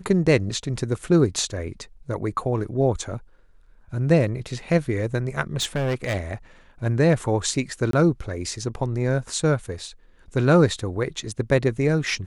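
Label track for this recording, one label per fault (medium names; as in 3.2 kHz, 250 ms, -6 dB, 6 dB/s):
5.600000	6.160000	clipped -20 dBFS
7.910000	7.930000	dropout 23 ms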